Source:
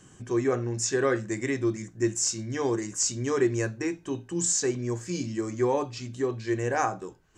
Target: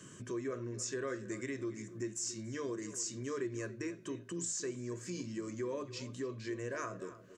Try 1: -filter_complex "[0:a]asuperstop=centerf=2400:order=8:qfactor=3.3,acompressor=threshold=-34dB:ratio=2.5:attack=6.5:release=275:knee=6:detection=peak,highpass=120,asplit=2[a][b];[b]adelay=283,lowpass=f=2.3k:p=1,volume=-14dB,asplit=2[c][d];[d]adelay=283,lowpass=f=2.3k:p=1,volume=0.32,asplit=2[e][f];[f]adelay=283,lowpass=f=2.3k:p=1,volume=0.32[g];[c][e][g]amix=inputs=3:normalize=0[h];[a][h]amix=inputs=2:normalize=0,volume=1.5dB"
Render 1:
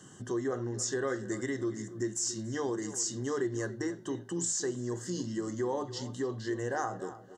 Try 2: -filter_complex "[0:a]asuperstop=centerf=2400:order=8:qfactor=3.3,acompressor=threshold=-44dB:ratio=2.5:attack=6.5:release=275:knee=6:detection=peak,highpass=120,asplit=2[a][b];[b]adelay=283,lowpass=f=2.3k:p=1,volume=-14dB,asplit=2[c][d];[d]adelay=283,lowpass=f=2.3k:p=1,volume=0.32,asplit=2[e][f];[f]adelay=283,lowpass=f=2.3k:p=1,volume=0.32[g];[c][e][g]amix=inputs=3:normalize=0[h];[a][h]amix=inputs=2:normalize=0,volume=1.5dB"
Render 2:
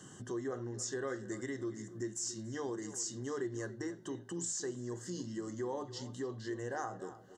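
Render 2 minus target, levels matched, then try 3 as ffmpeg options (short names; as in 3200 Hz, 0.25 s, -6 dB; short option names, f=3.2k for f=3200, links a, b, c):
1000 Hz band +3.0 dB
-filter_complex "[0:a]asuperstop=centerf=810:order=8:qfactor=3.3,acompressor=threshold=-44dB:ratio=2.5:attack=6.5:release=275:knee=6:detection=peak,highpass=120,asplit=2[a][b];[b]adelay=283,lowpass=f=2.3k:p=1,volume=-14dB,asplit=2[c][d];[d]adelay=283,lowpass=f=2.3k:p=1,volume=0.32,asplit=2[e][f];[f]adelay=283,lowpass=f=2.3k:p=1,volume=0.32[g];[c][e][g]amix=inputs=3:normalize=0[h];[a][h]amix=inputs=2:normalize=0,volume=1.5dB"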